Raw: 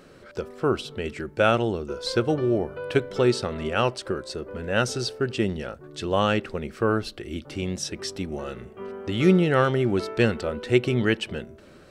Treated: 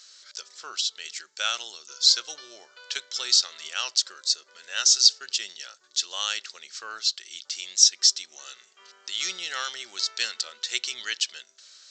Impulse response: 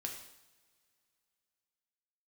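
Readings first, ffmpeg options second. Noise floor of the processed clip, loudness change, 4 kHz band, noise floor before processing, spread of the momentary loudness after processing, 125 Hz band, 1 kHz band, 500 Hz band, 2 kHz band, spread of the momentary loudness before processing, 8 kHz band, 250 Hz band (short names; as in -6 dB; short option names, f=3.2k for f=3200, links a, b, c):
-60 dBFS, +1.5 dB, +11.5 dB, -50 dBFS, 21 LU, under -40 dB, -10.5 dB, -26.0 dB, -4.0 dB, 13 LU, +16.0 dB, under -30 dB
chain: -af "asuperpass=centerf=5000:order=4:qfactor=0.51,aexciter=amount=7:drive=6.3:freq=3.7k,aresample=16000,aresample=44100,volume=-1dB"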